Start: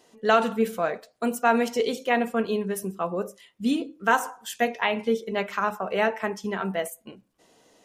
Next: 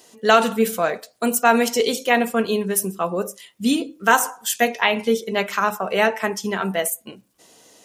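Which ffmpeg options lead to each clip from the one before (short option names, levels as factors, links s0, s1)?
-af "highpass=52,highshelf=f=4100:g=11.5,volume=1.68"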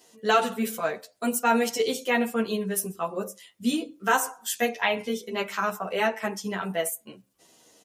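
-filter_complex "[0:a]asplit=2[s0][s1];[s1]adelay=10.3,afreqshift=-1.3[s2];[s0][s2]amix=inputs=2:normalize=1,volume=0.668"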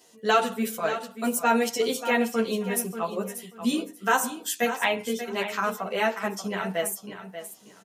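-af "aecho=1:1:586|1172|1758:0.282|0.0564|0.0113"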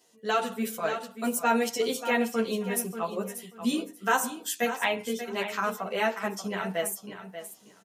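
-af "dynaudnorm=f=170:g=5:m=1.78,volume=0.447"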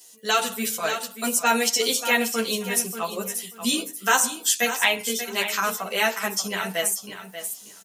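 -filter_complex "[0:a]crystalizer=i=7:c=0,acrossover=split=7400[s0][s1];[s1]acompressor=threshold=0.0282:ratio=4:attack=1:release=60[s2];[s0][s2]amix=inputs=2:normalize=0"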